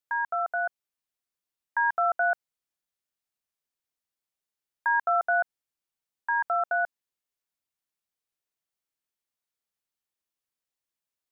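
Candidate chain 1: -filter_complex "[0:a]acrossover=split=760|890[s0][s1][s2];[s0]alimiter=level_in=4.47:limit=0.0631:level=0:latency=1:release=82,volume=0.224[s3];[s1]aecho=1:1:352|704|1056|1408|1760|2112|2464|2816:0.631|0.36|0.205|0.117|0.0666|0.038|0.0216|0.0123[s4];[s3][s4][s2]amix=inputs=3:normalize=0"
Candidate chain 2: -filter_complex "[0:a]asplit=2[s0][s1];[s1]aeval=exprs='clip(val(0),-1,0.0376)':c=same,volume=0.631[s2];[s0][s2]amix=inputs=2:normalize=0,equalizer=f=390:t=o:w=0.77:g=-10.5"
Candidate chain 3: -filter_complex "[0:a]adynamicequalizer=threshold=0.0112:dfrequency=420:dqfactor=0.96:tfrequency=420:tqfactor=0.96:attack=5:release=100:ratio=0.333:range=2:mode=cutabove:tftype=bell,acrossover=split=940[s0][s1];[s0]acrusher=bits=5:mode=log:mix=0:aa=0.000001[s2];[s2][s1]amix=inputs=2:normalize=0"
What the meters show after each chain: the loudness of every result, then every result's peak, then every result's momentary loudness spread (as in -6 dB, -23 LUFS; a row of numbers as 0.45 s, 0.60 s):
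-28.5 LUFS, -24.5 LUFS, -27.5 LUFS; -17.5 dBFS, -13.0 dBFS, -17.0 dBFS; 20 LU, 9 LU, 9 LU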